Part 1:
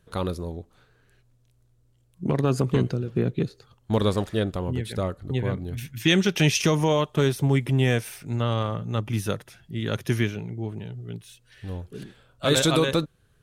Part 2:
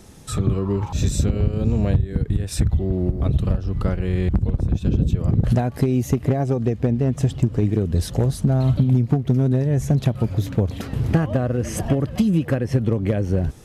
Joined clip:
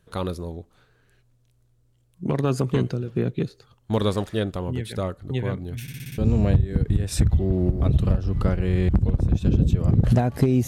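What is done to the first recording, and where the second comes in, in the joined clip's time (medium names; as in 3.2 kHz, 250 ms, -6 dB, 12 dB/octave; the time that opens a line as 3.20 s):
part 1
5.82 s: stutter in place 0.06 s, 6 plays
6.18 s: go over to part 2 from 1.58 s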